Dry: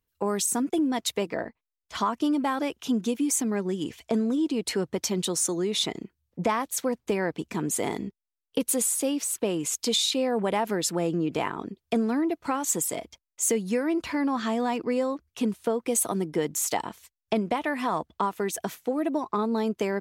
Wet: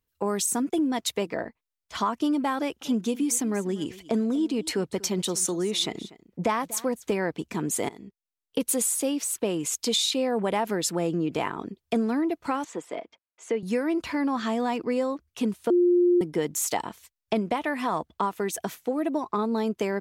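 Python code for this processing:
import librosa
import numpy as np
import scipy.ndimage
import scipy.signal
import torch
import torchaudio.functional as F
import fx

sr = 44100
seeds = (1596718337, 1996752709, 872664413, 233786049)

y = fx.echo_single(x, sr, ms=242, db=-19.0, at=(2.57, 7.13))
y = fx.bandpass_edges(y, sr, low_hz=290.0, high_hz=2400.0, at=(12.64, 13.63))
y = fx.edit(y, sr, fx.fade_in_from(start_s=7.89, length_s=0.73, floor_db=-18.0),
    fx.bleep(start_s=15.7, length_s=0.51, hz=353.0, db=-16.5), tone=tone)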